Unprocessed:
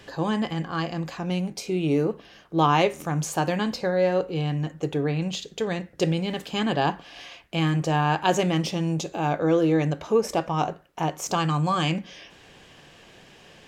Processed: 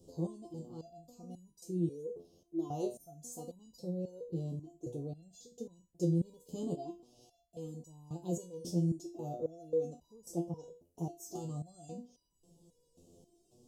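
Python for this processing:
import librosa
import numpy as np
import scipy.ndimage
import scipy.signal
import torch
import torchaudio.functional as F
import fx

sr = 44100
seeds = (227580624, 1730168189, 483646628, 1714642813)

y = scipy.signal.sosfilt(scipy.signal.cheby1(2, 1.0, [380.0, 8100.0], 'bandstop', fs=sr, output='sos'), x)
y = fx.resonator_held(y, sr, hz=3.7, low_hz=86.0, high_hz=970.0)
y = F.gain(torch.from_numpy(y), 3.0).numpy()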